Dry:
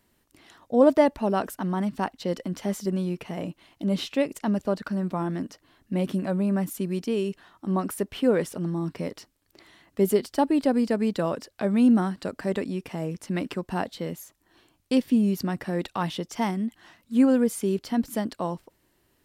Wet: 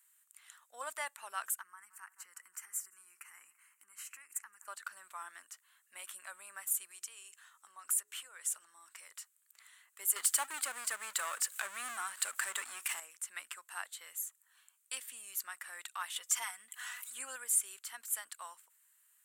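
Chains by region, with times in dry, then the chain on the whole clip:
1.61–4.68 s: feedback delay 170 ms, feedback 54%, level -22.5 dB + compression, threshold -30 dBFS + static phaser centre 1.5 kHz, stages 4
6.91–9.11 s: peaking EQ 6.6 kHz +5 dB 0.82 oct + hum notches 60/120/180/240/300/360/420 Hz + compression 5:1, threshold -31 dBFS
10.16–13.00 s: bass shelf 380 Hz +8 dB + power-law waveshaper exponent 0.7 + tape noise reduction on one side only encoder only
16.16–17.36 s: upward compressor, threshold -24 dBFS + comb 4.1 ms, depth 61%
whole clip: Chebyshev high-pass 1.3 kHz, order 3; resonant high shelf 6.4 kHz +7.5 dB, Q 3; trim -4.5 dB

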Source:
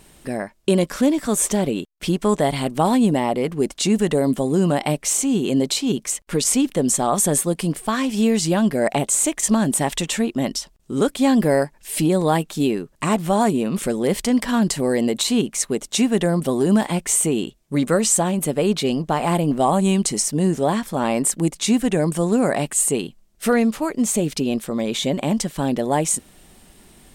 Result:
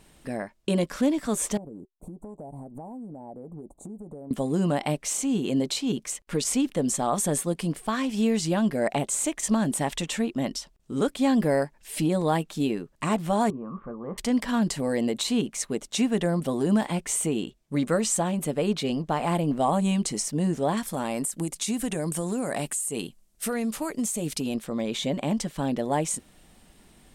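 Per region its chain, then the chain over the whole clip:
1.57–4.31 s: elliptic band-stop 850–9300 Hz + resonant high shelf 8 kHz -7.5 dB, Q 1.5 + compression 16:1, threshold -30 dBFS
13.50–14.18 s: four-pole ladder low-pass 1.2 kHz, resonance 85% + bass shelf 180 Hz +8.5 dB + doubling 22 ms -11.5 dB
20.77–24.55 s: peaking EQ 11 kHz +13 dB 1.5 oct + compression 10:1, threshold -17 dBFS
whole clip: treble shelf 7.9 kHz -6 dB; band-stop 380 Hz, Q 12; trim -5.5 dB

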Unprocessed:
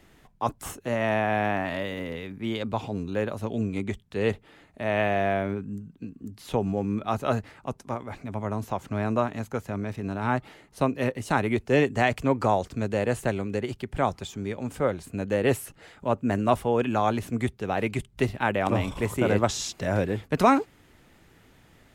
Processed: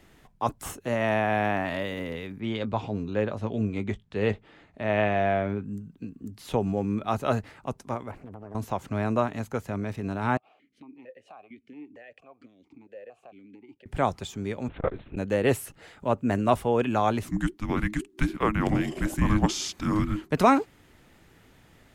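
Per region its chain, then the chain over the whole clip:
2.40–5.65 s: distance through air 85 m + doubling 19 ms -13 dB
8.11–8.55 s: peaking EQ 4.8 kHz -13 dB 2.3 oct + compression, threshold -38 dBFS + loudspeaker Doppler distortion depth 0.69 ms
10.37–13.86 s: compression 4:1, threshold -35 dBFS + stepped vowel filter 4.4 Hz
14.68–15.17 s: LPC vocoder at 8 kHz whisper + transformer saturation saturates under 340 Hz
17.24–20.31 s: peaking EQ 1.5 kHz +3 dB 0.43 oct + frequency shift -420 Hz
whole clip: none

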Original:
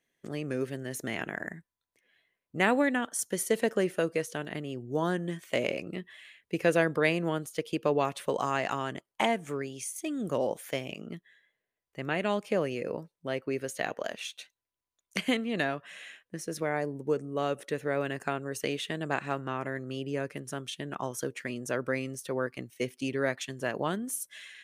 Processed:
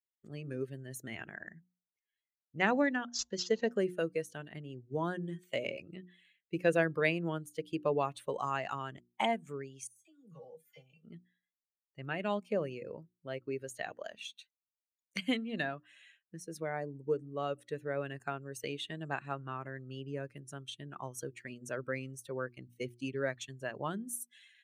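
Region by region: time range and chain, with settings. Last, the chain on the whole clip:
1.35–3.72 s: careless resampling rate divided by 3×, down none, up filtered + de-hum 176 Hz, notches 6
9.87–11.04 s: de-esser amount 70% + feedback comb 160 Hz, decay 0.17 s, harmonics odd, mix 90% + phase dispersion lows, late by 44 ms, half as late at 1 kHz
whole clip: expander on every frequency bin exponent 1.5; treble shelf 8.8 kHz -3.5 dB; hum notches 60/120/180/240/300/360 Hz; trim -1.5 dB

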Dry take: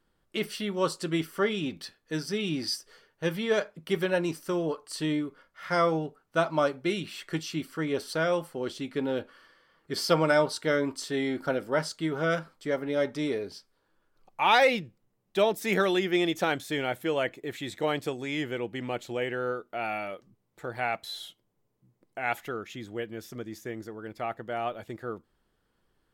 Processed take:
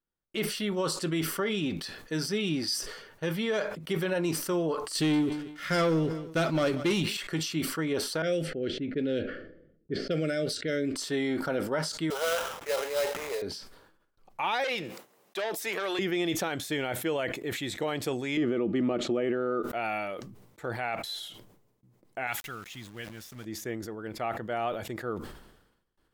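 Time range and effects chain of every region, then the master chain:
4.95–7.17 s: peaking EQ 910 Hz -14 dB 1.1 oct + waveshaping leveller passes 2 + feedback delay 184 ms, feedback 27%, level -21 dB
8.22–10.96 s: de-esser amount 85% + level-controlled noise filter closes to 320 Hz, open at -23 dBFS + Butterworth band-stop 970 Hz, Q 0.9
12.10–13.42 s: Chebyshev band-pass 460–8100 Hz, order 4 + sample-rate reducer 4.5 kHz, jitter 20%
14.64–15.99 s: high-pass 470 Hz + transformer saturation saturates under 2.2 kHz
18.37–19.63 s: low-pass 5.9 kHz + peaking EQ 630 Hz +8.5 dB 0.3 oct + small resonant body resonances 230/330/1200 Hz, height 15 dB, ringing for 35 ms
22.27–23.45 s: peaking EQ 450 Hz -14 dB 1.9 oct + small samples zeroed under -50 dBFS
whole clip: peak limiter -21.5 dBFS; gate with hold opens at -59 dBFS; decay stretcher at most 63 dB/s; trim +1 dB

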